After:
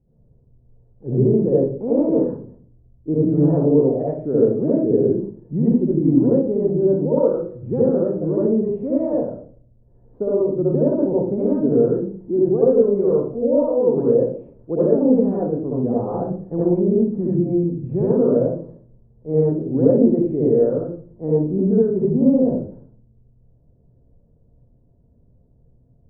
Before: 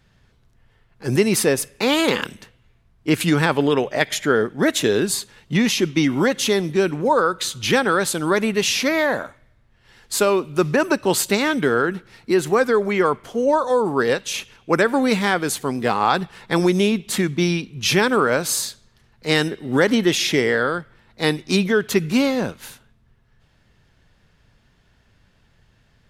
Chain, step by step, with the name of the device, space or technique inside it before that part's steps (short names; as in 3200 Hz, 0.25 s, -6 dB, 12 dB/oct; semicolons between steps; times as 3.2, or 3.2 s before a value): next room (LPF 530 Hz 24 dB/oct; reverb RT60 0.45 s, pre-delay 61 ms, DRR -7.5 dB); gain -4 dB